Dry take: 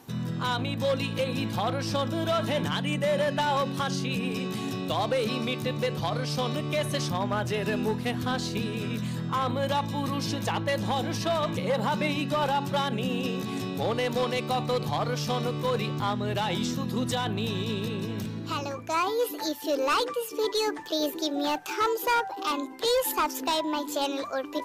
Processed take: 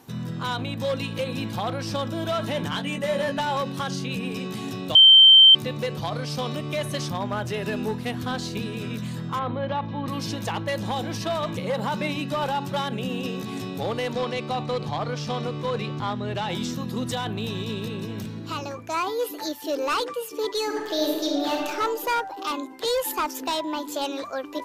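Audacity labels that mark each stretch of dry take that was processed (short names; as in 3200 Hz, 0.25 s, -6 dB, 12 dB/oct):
2.690000	3.400000	doubler 18 ms -5 dB
4.950000	5.550000	bleep 3120 Hz -8 dBFS
9.390000	10.080000	Gaussian blur sigma 2.6 samples
14.120000	16.490000	Bessel low-pass 5800 Hz
20.640000	21.640000	reverb throw, RT60 1.5 s, DRR -0.5 dB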